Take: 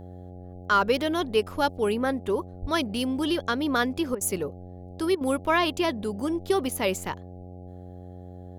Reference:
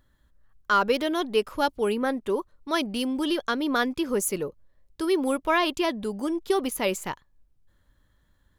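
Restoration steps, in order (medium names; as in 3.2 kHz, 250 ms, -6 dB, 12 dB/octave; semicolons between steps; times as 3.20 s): de-hum 90.4 Hz, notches 9; de-plosive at 2.61 s; interpolate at 4.15/5.15 s, 58 ms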